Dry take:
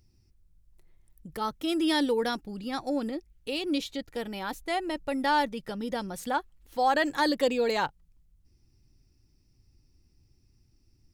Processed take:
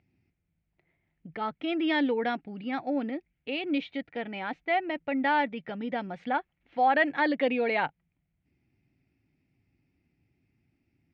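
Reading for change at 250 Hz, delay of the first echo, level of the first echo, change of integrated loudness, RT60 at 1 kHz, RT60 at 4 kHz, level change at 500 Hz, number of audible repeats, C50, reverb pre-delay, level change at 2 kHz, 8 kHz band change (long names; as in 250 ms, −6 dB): 0.0 dB, no echo audible, no echo audible, 0.0 dB, no reverb audible, no reverb audible, −1.0 dB, no echo audible, no reverb audible, no reverb audible, +3.0 dB, below −30 dB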